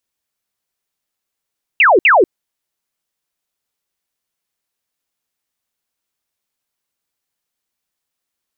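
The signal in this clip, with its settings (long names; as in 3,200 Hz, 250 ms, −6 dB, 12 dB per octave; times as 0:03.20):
repeated falling chirps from 2,900 Hz, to 320 Hz, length 0.19 s sine, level −6 dB, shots 2, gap 0.06 s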